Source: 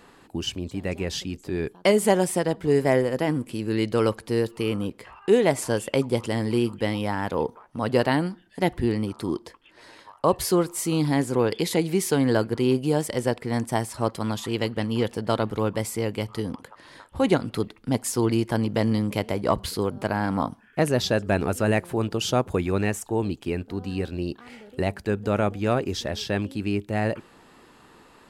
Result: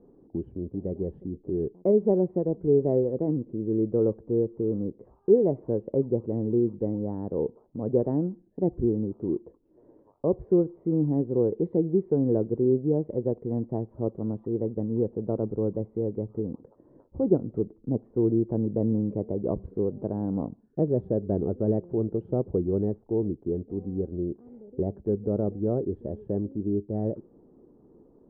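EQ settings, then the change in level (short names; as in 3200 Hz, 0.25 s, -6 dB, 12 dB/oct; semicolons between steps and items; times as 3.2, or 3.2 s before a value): ladder low-pass 530 Hz, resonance 30%; dynamic EQ 260 Hz, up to -4 dB, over -44 dBFS, Q 3.6; bell 92 Hz -2.5 dB 0.77 oct; +5.0 dB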